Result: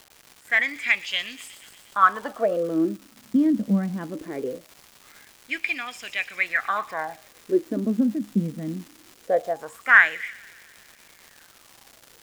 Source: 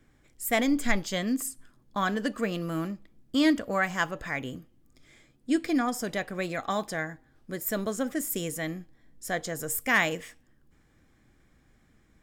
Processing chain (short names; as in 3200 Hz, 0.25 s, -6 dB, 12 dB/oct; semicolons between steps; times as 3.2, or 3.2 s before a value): wah 0.21 Hz 200–2700 Hz, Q 8.2; AGC gain up to 12.5 dB; crackle 410/s -43 dBFS; on a send: thin delay 0.12 s, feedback 70%, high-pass 4800 Hz, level -8.5 dB; on the sum: gain +7 dB